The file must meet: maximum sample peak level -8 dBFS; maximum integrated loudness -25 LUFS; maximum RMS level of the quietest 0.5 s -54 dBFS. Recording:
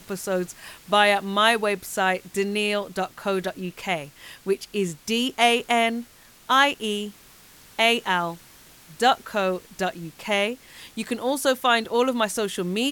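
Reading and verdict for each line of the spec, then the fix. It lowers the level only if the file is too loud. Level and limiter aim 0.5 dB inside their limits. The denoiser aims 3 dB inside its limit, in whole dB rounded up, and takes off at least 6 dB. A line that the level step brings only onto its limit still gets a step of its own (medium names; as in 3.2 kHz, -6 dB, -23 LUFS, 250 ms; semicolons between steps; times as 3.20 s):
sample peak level -4.5 dBFS: fail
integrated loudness -23.5 LUFS: fail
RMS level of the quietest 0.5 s -50 dBFS: fail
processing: noise reduction 6 dB, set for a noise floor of -50 dBFS; trim -2 dB; peak limiter -8.5 dBFS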